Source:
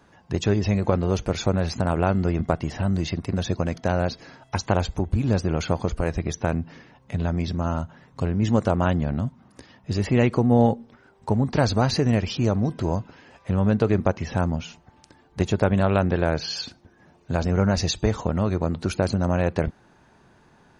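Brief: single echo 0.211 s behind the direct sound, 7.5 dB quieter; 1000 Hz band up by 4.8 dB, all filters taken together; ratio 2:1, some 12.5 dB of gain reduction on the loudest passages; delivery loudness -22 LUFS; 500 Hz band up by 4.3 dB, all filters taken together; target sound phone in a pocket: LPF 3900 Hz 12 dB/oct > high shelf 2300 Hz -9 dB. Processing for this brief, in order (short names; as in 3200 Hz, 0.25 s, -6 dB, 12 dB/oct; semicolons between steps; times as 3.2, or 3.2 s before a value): bell 500 Hz +4 dB; bell 1000 Hz +6.5 dB; compressor 2:1, threshold -35 dBFS; LPF 3900 Hz 12 dB/oct; high shelf 2300 Hz -9 dB; echo 0.211 s -7.5 dB; gain +10.5 dB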